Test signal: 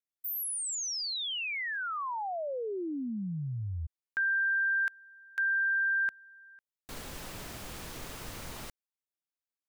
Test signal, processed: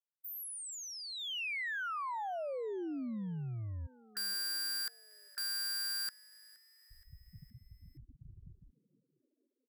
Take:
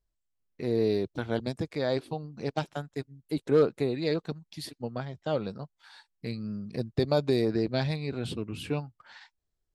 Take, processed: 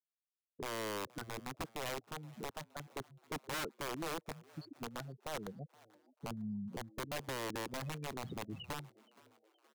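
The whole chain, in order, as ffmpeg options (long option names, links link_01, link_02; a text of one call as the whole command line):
ffmpeg -i in.wav -filter_complex "[0:a]afftfilt=real='re*gte(hypot(re,im),0.0398)':imag='im*gte(hypot(re,im),0.0398)':win_size=1024:overlap=0.75,highpass=frequency=110:poles=1,highshelf=frequency=3400:width_type=q:width=1.5:gain=-9.5,acompressor=threshold=-42dB:ratio=2.5:attack=0.44:release=358:knee=6:detection=rms,aeval=exprs='(mod(66.8*val(0)+1,2)-1)/66.8':channel_layout=same,asplit=5[link_01][link_02][link_03][link_04][link_05];[link_02]adelay=471,afreqshift=110,volume=-23dB[link_06];[link_03]adelay=942,afreqshift=220,volume=-28.5dB[link_07];[link_04]adelay=1413,afreqshift=330,volume=-34dB[link_08];[link_05]adelay=1884,afreqshift=440,volume=-39.5dB[link_09];[link_01][link_06][link_07][link_08][link_09]amix=inputs=5:normalize=0,volume=2.5dB" out.wav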